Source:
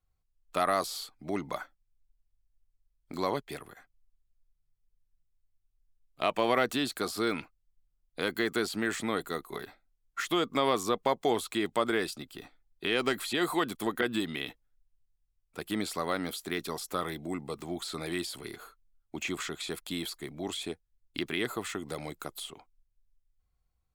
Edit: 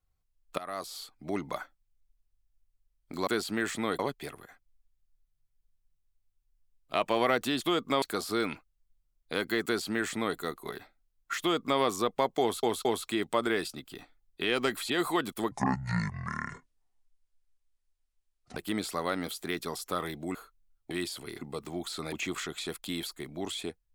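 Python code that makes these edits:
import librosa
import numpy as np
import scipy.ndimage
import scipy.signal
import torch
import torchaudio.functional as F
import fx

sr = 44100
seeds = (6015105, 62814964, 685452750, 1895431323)

y = fx.edit(x, sr, fx.fade_in_from(start_s=0.58, length_s=0.66, floor_db=-18.5),
    fx.duplicate(start_s=8.52, length_s=0.72, to_s=3.27),
    fx.duplicate(start_s=10.26, length_s=0.41, to_s=6.89),
    fx.stutter(start_s=11.28, slice_s=0.22, count=3),
    fx.speed_span(start_s=13.94, length_s=1.65, speed=0.54),
    fx.swap(start_s=17.37, length_s=0.71, other_s=18.59, other_length_s=0.56), tone=tone)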